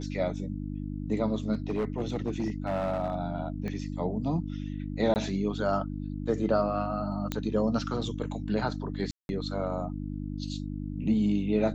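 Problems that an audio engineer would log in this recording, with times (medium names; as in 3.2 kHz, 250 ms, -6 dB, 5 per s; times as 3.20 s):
hum 50 Hz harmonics 6 -35 dBFS
1.53–3.16 s: clipped -24.5 dBFS
3.68 s: pop -24 dBFS
5.14–5.16 s: dropout 19 ms
7.32 s: pop -15 dBFS
9.11–9.29 s: dropout 181 ms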